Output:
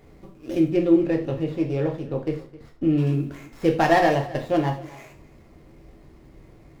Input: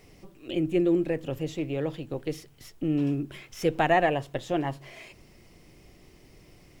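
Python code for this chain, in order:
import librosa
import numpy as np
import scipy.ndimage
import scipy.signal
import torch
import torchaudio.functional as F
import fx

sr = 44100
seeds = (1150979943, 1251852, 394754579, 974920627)

y = scipy.ndimage.median_filter(x, 15, mode='constant')
y = fx.high_shelf(y, sr, hz=5300.0, db=-10.0, at=(0.68, 2.98))
y = y + 10.0 ** (-19.0 / 20.0) * np.pad(y, (int(262 * sr / 1000.0), 0))[:len(y)]
y = fx.rev_gated(y, sr, seeds[0], gate_ms=130, shape='falling', drr_db=2.0)
y = F.gain(torch.from_numpy(y), 3.5).numpy()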